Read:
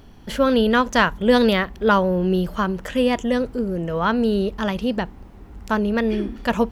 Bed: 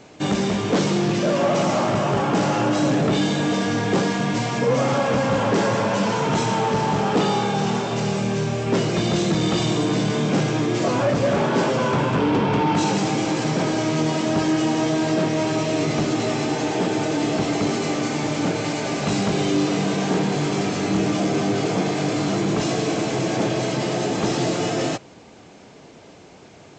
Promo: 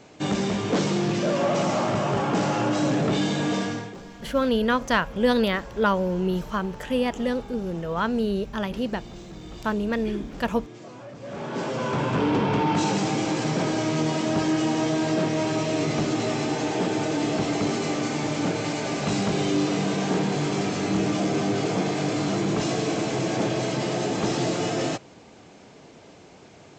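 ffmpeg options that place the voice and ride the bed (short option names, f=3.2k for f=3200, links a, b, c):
-filter_complex "[0:a]adelay=3950,volume=-5dB[a];[1:a]volume=15dB,afade=t=out:st=3.58:d=0.36:silence=0.125893,afade=t=in:st=11.19:d=1.02:silence=0.11885[b];[a][b]amix=inputs=2:normalize=0"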